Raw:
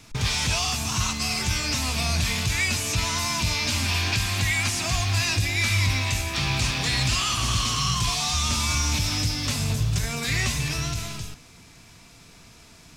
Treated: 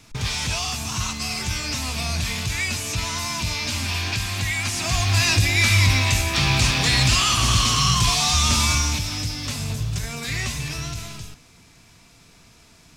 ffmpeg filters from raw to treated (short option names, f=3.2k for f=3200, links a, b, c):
-af "volume=5.5dB,afade=t=in:st=4.63:d=0.67:silence=0.473151,afade=t=out:st=8.63:d=0.41:silence=0.421697"